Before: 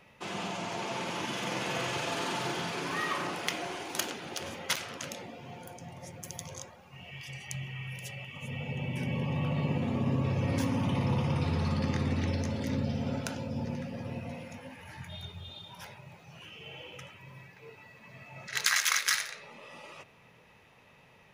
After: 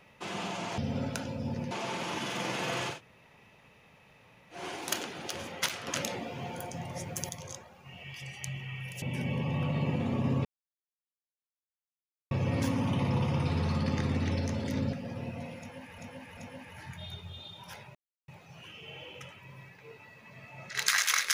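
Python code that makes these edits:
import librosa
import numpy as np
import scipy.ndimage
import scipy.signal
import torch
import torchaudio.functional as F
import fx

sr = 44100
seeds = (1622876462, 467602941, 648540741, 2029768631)

y = fx.edit(x, sr, fx.room_tone_fill(start_s=2.0, length_s=1.65, crossfade_s=0.16),
    fx.clip_gain(start_s=4.94, length_s=1.42, db=6.5),
    fx.cut(start_s=8.09, length_s=0.75),
    fx.insert_silence(at_s=10.27, length_s=1.86),
    fx.move(start_s=12.89, length_s=0.93, to_s=0.78),
    fx.repeat(start_s=14.48, length_s=0.39, count=3),
    fx.insert_silence(at_s=16.06, length_s=0.33), tone=tone)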